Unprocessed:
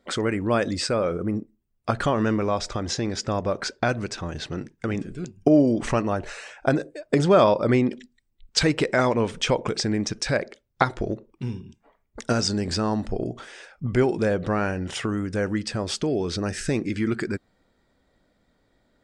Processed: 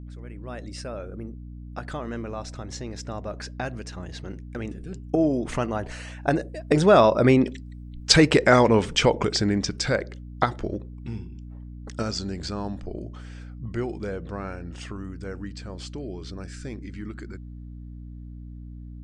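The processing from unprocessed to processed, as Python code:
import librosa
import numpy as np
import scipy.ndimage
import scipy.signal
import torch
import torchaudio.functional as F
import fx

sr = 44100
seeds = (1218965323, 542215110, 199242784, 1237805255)

y = fx.fade_in_head(x, sr, length_s=0.84)
y = fx.doppler_pass(y, sr, speed_mps=21, closest_m=23.0, pass_at_s=8.2)
y = fx.add_hum(y, sr, base_hz=60, snr_db=13)
y = y * librosa.db_to_amplitude(5.0)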